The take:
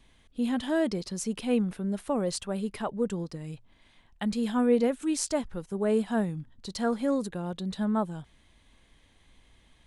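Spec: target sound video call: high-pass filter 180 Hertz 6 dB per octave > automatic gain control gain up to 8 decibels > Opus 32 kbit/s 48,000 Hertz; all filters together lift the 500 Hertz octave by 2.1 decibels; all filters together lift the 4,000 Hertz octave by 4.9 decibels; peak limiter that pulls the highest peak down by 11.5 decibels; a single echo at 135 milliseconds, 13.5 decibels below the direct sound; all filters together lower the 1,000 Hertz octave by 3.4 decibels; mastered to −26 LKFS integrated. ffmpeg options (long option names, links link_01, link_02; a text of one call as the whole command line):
ffmpeg -i in.wav -af "equalizer=frequency=500:width_type=o:gain=4.5,equalizer=frequency=1000:width_type=o:gain=-7,equalizer=frequency=4000:width_type=o:gain=6.5,alimiter=limit=-22dB:level=0:latency=1,highpass=frequency=180:poles=1,aecho=1:1:135:0.211,dynaudnorm=maxgain=8dB,volume=7.5dB" -ar 48000 -c:a libopus -b:a 32k out.opus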